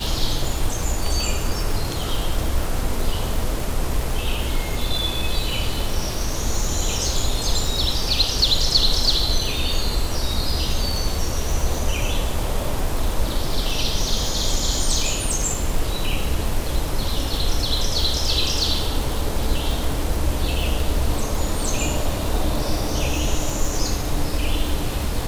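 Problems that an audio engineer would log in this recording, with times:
crackle 110 per s -24 dBFS

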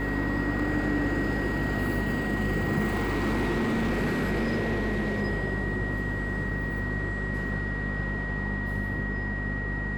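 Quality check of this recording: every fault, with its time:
hum 50 Hz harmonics 5 -32 dBFS
whine 1.9 kHz -33 dBFS
2.87–5.22 s: clipped -23 dBFS

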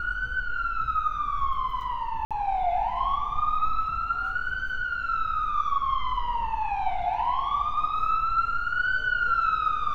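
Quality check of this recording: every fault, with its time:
2.25–2.31 s: dropout 57 ms

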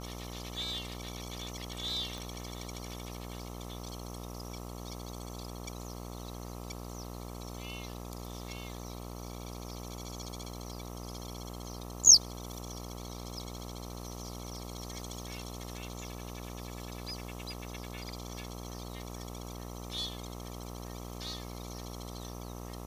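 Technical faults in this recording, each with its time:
buzz 60 Hz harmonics 22 -43 dBFS
2.18 s: pop

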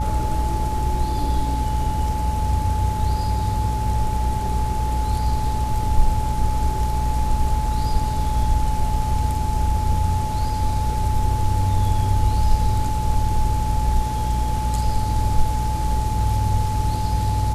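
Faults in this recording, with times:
hum 60 Hz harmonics 4 -24 dBFS
whine 860 Hz -26 dBFS

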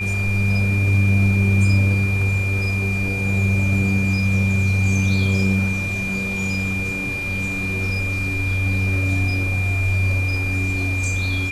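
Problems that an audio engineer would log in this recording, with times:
whine 2.4 kHz -24 dBFS

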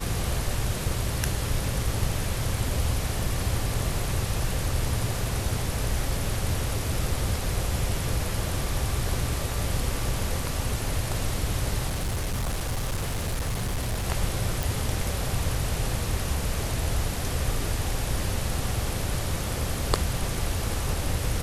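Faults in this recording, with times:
11.88–14.06 s: clipped -24 dBFS
14.63 s: pop

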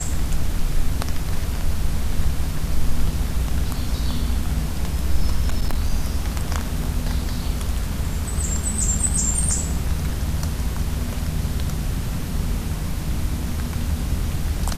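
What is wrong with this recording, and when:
5.43–5.93 s: clipped -14 dBFS

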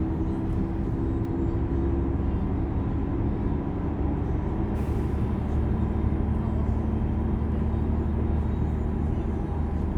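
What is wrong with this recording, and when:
1.25 s: dropout 2.1 ms

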